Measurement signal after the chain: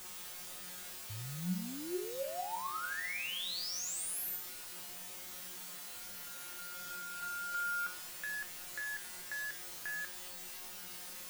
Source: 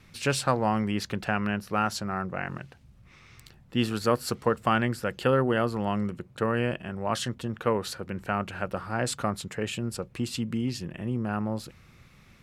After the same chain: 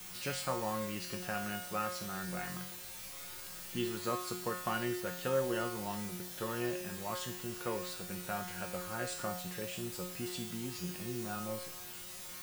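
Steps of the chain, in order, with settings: in parallel at -2 dB: compressor, threshold -38 dBFS; on the sum: requantised 6-bit, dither triangular; resonator 180 Hz, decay 0.63 s, harmonics all, mix 90%; gain +2.5 dB

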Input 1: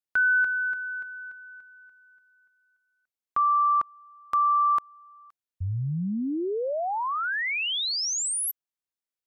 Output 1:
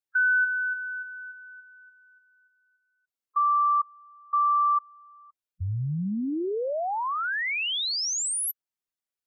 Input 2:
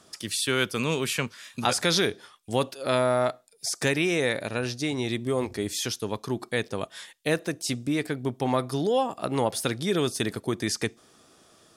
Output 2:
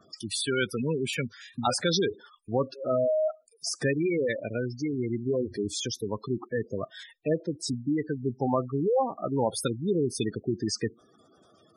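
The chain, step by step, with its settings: spectral gate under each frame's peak -10 dB strong

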